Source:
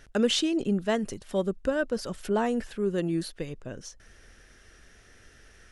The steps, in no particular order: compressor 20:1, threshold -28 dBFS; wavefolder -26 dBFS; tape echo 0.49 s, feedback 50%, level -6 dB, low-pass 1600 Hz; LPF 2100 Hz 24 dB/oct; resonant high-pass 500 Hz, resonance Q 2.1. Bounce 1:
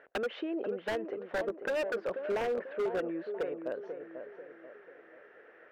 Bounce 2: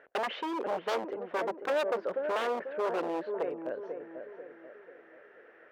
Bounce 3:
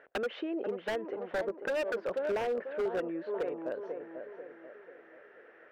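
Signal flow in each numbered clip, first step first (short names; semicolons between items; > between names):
LPF > compressor > resonant high-pass > tape echo > wavefolder; tape echo > LPF > wavefolder > compressor > resonant high-pass; LPF > tape echo > compressor > resonant high-pass > wavefolder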